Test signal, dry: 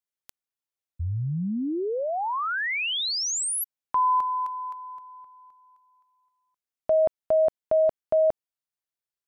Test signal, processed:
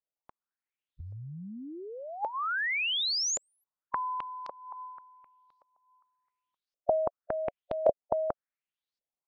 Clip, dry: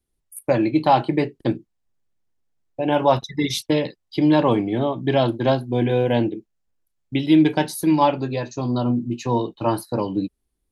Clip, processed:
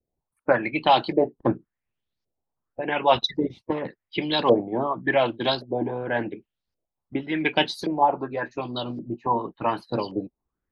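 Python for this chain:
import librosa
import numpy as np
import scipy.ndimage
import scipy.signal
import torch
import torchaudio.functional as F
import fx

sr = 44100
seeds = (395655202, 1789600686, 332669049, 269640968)

y = fx.filter_lfo_lowpass(x, sr, shape='saw_up', hz=0.89, low_hz=550.0, high_hz=5000.0, q=3.8)
y = fx.hpss(y, sr, part='harmonic', gain_db=-14)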